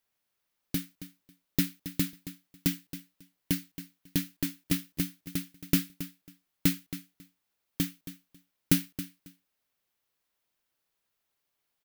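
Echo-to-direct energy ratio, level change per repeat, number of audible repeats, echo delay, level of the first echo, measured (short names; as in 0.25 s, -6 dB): -13.5 dB, -15.5 dB, 2, 0.273 s, -13.5 dB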